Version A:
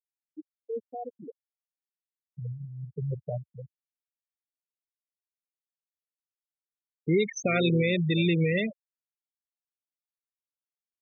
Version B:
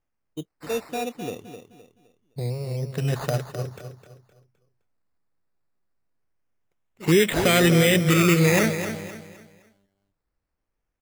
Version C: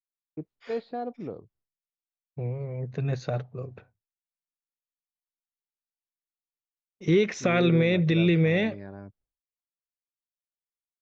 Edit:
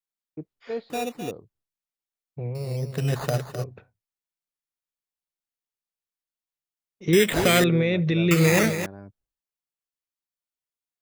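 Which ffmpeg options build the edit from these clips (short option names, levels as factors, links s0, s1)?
-filter_complex "[1:a]asplit=4[s0][s1][s2][s3];[2:a]asplit=5[s4][s5][s6][s7][s8];[s4]atrim=end=0.902[s9];[s0]atrim=start=0.898:end=1.312[s10];[s5]atrim=start=1.308:end=2.552[s11];[s1]atrim=start=2.548:end=3.642[s12];[s6]atrim=start=3.638:end=7.132[s13];[s2]atrim=start=7.128:end=7.642[s14];[s7]atrim=start=7.638:end=8.312[s15];[s3]atrim=start=8.308:end=8.862[s16];[s8]atrim=start=8.858[s17];[s9][s10]acrossfade=d=0.004:c1=hsin:c2=hsin[s18];[s18][s11]acrossfade=d=0.004:c1=hsin:c2=hsin[s19];[s19][s12]acrossfade=d=0.004:c1=hsin:c2=hsin[s20];[s20][s13]acrossfade=d=0.004:c1=hsin:c2=hsin[s21];[s21][s14]acrossfade=d=0.004:c1=hsin:c2=hsin[s22];[s22][s15]acrossfade=d=0.004:c1=hsin:c2=hsin[s23];[s23][s16]acrossfade=d=0.004:c1=hsin:c2=hsin[s24];[s24][s17]acrossfade=d=0.004:c1=hsin:c2=hsin"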